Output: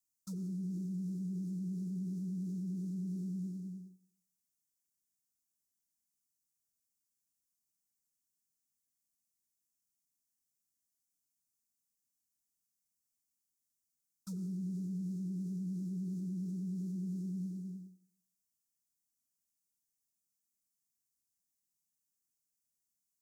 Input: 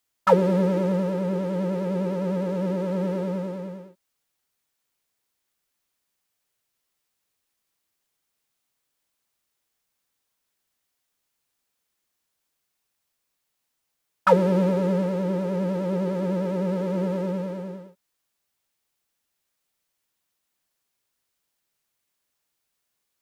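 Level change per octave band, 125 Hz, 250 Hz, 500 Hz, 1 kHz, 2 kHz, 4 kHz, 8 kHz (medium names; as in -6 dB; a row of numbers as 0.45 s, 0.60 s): -11.5 dB, -12.0 dB, -35.5 dB, under -40 dB, under -40 dB, under -20 dB, no reading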